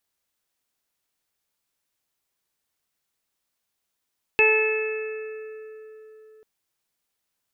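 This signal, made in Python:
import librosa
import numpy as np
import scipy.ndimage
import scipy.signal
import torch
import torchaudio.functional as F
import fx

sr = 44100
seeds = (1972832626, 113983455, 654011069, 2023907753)

y = fx.additive(sr, length_s=2.04, hz=435.0, level_db=-19, upper_db=(-7, -17.5, -7.0, -10, 4.5), decay_s=4.05, upper_decays_s=(1.28, 3.45, 2.68, 1.87, 1.76))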